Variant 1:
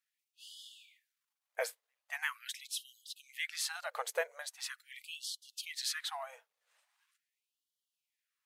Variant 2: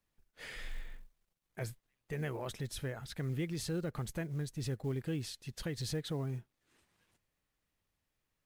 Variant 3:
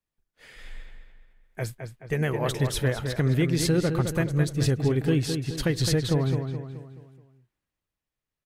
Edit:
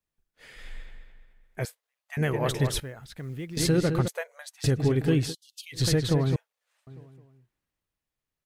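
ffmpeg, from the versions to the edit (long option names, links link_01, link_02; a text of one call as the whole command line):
ffmpeg -i take0.wav -i take1.wav -i take2.wav -filter_complex "[0:a]asplit=4[link_01][link_02][link_03][link_04];[2:a]asplit=6[link_05][link_06][link_07][link_08][link_09][link_10];[link_05]atrim=end=1.652[link_11];[link_01]atrim=start=1.648:end=2.172[link_12];[link_06]atrim=start=2.168:end=2.802[link_13];[1:a]atrim=start=2.798:end=3.572[link_14];[link_07]atrim=start=3.568:end=4.082[link_15];[link_02]atrim=start=4.078:end=4.642[link_16];[link_08]atrim=start=4.638:end=5.35[link_17];[link_03]atrim=start=5.25:end=5.82[link_18];[link_09]atrim=start=5.72:end=6.362[link_19];[link_04]atrim=start=6.358:end=6.872[link_20];[link_10]atrim=start=6.868[link_21];[link_11][link_12]acrossfade=duration=0.004:curve1=hsin:curve2=hsin[link_22];[link_22][link_13]acrossfade=duration=0.004:curve1=hsin:curve2=hsin[link_23];[link_23][link_14]acrossfade=duration=0.004:curve1=hsin:curve2=hsin[link_24];[link_24][link_15]acrossfade=duration=0.004:curve1=hsin:curve2=hsin[link_25];[link_25][link_16]acrossfade=duration=0.004:curve1=hsin:curve2=hsin[link_26];[link_26][link_17]acrossfade=duration=0.004:curve1=hsin:curve2=hsin[link_27];[link_27][link_18]acrossfade=duration=0.1:curve1=tri:curve2=tri[link_28];[link_28][link_19]acrossfade=duration=0.1:curve1=tri:curve2=tri[link_29];[link_29][link_20]acrossfade=duration=0.004:curve1=hsin:curve2=hsin[link_30];[link_30][link_21]acrossfade=duration=0.004:curve1=hsin:curve2=hsin" out.wav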